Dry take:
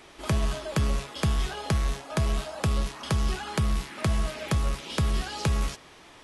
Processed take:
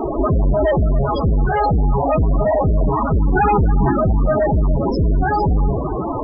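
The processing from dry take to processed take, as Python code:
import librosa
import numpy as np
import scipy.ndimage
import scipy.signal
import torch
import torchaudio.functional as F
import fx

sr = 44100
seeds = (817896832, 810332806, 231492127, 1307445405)

p1 = fx.tracing_dist(x, sr, depth_ms=0.4)
p2 = fx.dynamic_eq(p1, sr, hz=350.0, q=2.0, threshold_db=-47.0, ratio=4.0, max_db=-8, at=(0.82, 2.09), fade=0.02)
p3 = 10.0 ** (-17.0 / 20.0) * np.tanh(p2 / 10.0 ** (-17.0 / 20.0))
p4 = fx.peak_eq(p3, sr, hz=2800.0, db=-14.0, octaves=1.1)
p5 = fx.fuzz(p4, sr, gain_db=54.0, gate_db=-60.0)
p6 = p5 + fx.echo_single(p5, sr, ms=286, db=-12.5, dry=0)
p7 = fx.spec_topn(p6, sr, count=16)
y = fx.env_flatten(p7, sr, amount_pct=70, at=(3.34, 3.91), fade=0.02)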